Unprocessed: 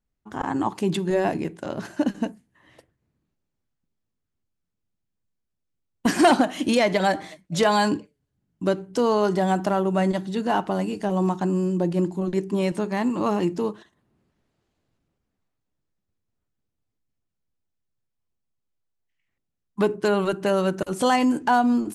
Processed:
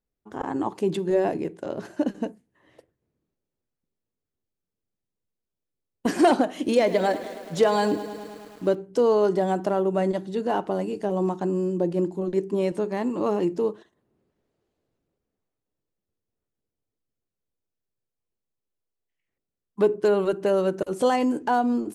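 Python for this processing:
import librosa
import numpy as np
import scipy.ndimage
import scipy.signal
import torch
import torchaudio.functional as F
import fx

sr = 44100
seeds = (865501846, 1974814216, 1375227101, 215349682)

y = fx.peak_eq(x, sr, hz=450.0, db=9.5, octaves=1.2)
y = fx.echo_crushed(y, sr, ms=106, feedback_pct=80, bits=6, wet_db=-14.5, at=(6.55, 8.75))
y = y * librosa.db_to_amplitude(-6.5)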